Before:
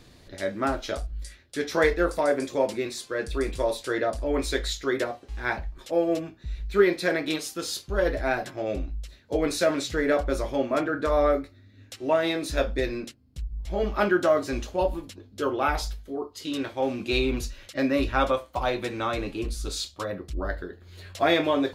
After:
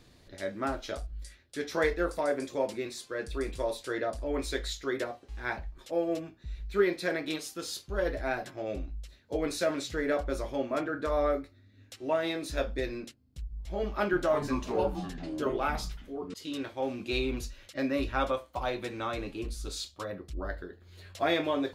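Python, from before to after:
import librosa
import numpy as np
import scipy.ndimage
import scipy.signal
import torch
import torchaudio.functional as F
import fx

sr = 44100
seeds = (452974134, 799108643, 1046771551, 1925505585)

y = fx.echo_pitch(x, sr, ms=282, semitones=-6, count=2, db_per_echo=-6.0, at=(13.84, 16.34))
y = F.gain(torch.from_numpy(y), -6.0).numpy()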